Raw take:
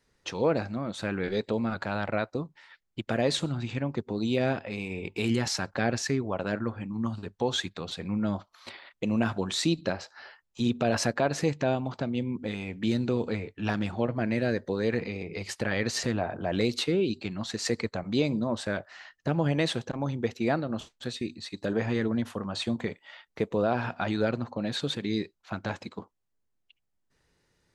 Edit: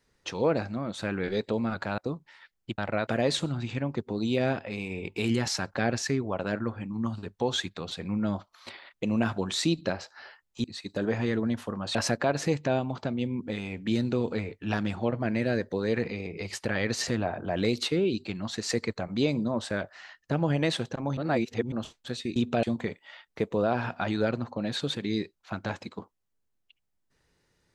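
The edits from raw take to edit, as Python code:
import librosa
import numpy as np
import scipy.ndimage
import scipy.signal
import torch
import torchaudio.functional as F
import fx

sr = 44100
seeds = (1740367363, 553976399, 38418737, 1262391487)

y = fx.edit(x, sr, fx.move(start_s=1.98, length_s=0.29, to_s=3.07),
    fx.swap(start_s=10.64, length_s=0.27, other_s=21.32, other_length_s=1.31),
    fx.reverse_span(start_s=20.13, length_s=0.55), tone=tone)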